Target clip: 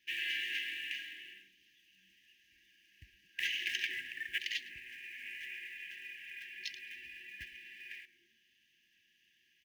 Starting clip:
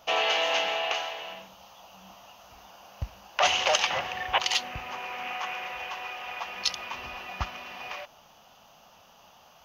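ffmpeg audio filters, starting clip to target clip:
-filter_complex "[0:a]acrossover=split=540 2400:gain=0.0708 1 0.126[s0][s1][s2];[s0][s1][s2]amix=inputs=3:normalize=0,asplit=2[s3][s4];[s4]acrusher=bits=3:mode=log:mix=0:aa=0.000001,volume=0.398[s5];[s3][s5]amix=inputs=2:normalize=0,asplit=4[s6][s7][s8][s9];[s7]adelay=108,afreqshift=-120,volume=0.106[s10];[s8]adelay=216,afreqshift=-240,volume=0.0422[s11];[s9]adelay=324,afreqshift=-360,volume=0.017[s12];[s6][s10][s11][s12]amix=inputs=4:normalize=0,afftfilt=real='re*(1-between(b*sr/4096,380,1600))':imag='im*(1-between(b*sr/4096,380,1600))':win_size=4096:overlap=0.75,volume=0.531"

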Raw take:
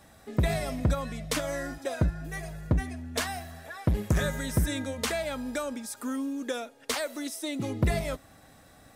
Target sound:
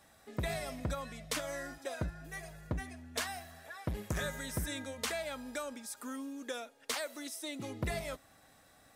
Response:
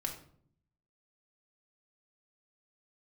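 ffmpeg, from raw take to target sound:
-af "lowshelf=f=440:g=-7.5,volume=0.562"

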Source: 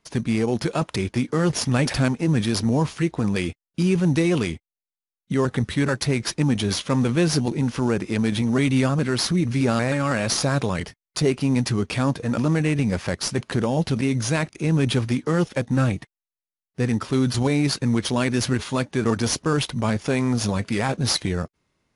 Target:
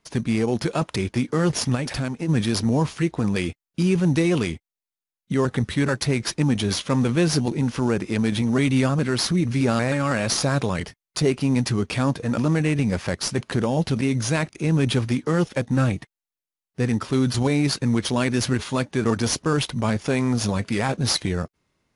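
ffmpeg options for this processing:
-filter_complex "[0:a]asplit=3[s0][s1][s2];[s0]afade=t=out:st=1.74:d=0.02[s3];[s1]acompressor=threshold=0.0562:ratio=3,afade=t=in:st=1.74:d=0.02,afade=t=out:st=2.28:d=0.02[s4];[s2]afade=t=in:st=2.28:d=0.02[s5];[s3][s4][s5]amix=inputs=3:normalize=0"

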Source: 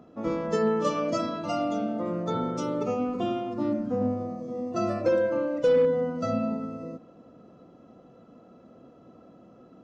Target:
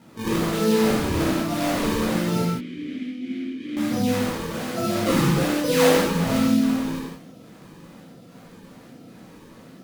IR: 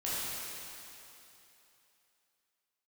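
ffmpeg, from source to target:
-filter_complex "[0:a]equalizer=f=160:w=0.91:g=8.5,acrusher=samples=37:mix=1:aa=0.000001:lfo=1:lforange=59.2:lforate=1.2,asettb=1/sr,asplit=3[s0][s1][s2];[s0]atrim=end=2.394[s3];[s1]atrim=start=2.39:end=3.77,asetpts=PTS-STARTPTS,afade=t=in:d=0.004:c=qsin,afade=t=out:st=1.376:d=0.004:c=qsin,asplit=3[s4][s5][s6];[s4]bandpass=f=270:t=q:w=8,volume=1[s7];[s5]bandpass=f=2290:t=q:w=8,volume=0.501[s8];[s6]bandpass=f=3010:t=q:w=8,volume=0.355[s9];[s7][s8][s9]amix=inputs=3:normalize=0[s10];[s2]atrim=start=3.766[s11];[s3][s10]acrossfade=d=0.004:c1=hsin:c2=qsin[s12];[s12][s11]acrossfade=d=0.004:c1=qsin:c2=hsin[s13];[1:a]atrim=start_sample=2205,afade=t=out:st=0.33:d=0.01,atrim=end_sample=14994,asetrate=57330,aresample=44100[s14];[s13][s14]afir=irnorm=-1:irlink=0"

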